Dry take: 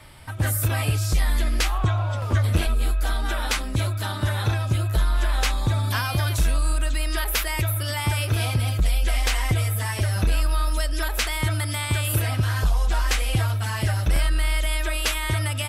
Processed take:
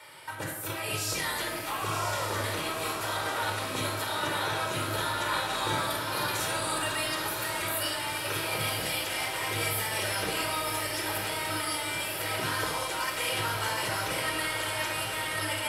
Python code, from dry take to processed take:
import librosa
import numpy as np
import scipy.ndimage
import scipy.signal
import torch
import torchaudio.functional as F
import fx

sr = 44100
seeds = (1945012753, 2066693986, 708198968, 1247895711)

y = scipy.signal.sosfilt(scipy.signal.butter(2, 440.0, 'highpass', fs=sr, output='sos'), x)
y = fx.over_compress(y, sr, threshold_db=-32.0, ratio=-0.5)
y = fx.doubler(y, sr, ms=44.0, db=-2.5, at=(5.28, 6.3))
y = fx.echo_diffused(y, sr, ms=1031, feedback_pct=61, wet_db=-4.5)
y = fx.room_shoebox(y, sr, seeds[0], volume_m3=2400.0, walls='furnished', distance_m=4.6)
y = y * librosa.db_to_amplitude(-4.5)